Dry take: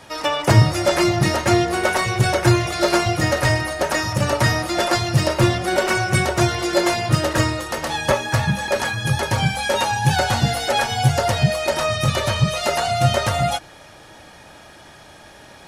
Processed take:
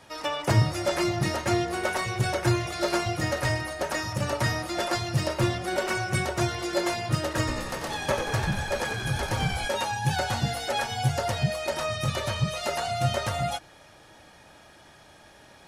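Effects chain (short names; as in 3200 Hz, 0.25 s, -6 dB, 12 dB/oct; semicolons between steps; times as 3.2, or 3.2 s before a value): 7.38–9.68 frequency-shifting echo 91 ms, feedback 60%, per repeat -63 Hz, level -6.5 dB; gain -8.5 dB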